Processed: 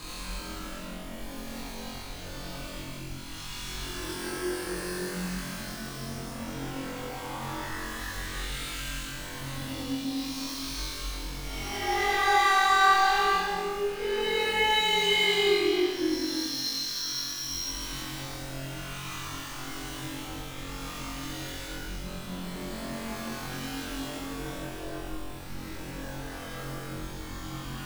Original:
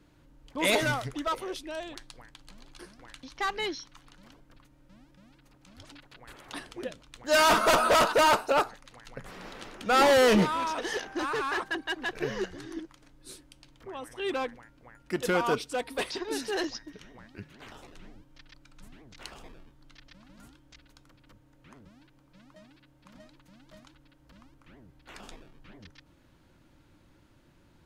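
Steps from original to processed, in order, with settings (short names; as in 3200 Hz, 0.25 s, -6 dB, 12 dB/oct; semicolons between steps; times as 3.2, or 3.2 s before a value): zero-crossing step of -36.5 dBFS; Paulstretch 13×, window 0.10 s, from 2.48; flutter echo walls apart 3.8 m, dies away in 0.73 s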